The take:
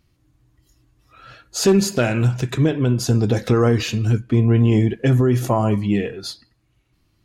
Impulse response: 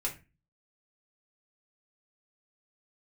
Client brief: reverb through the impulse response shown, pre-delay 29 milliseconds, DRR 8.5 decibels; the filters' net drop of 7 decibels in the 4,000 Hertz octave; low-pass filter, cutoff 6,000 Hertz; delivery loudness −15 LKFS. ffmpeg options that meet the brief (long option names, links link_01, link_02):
-filter_complex "[0:a]lowpass=6000,equalizer=frequency=4000:width_type=o:gain=-8,asplit=2[link_01][link_02];[1:a]atrim=start_sample=2205,adelay=29[link_03];[link_02][link_03]afir=irnorm=-1:irlink=0,volume=-11.5dB[link_04];[link_01][link_04]amix=inputs=2:normalize=0,volume=3dB"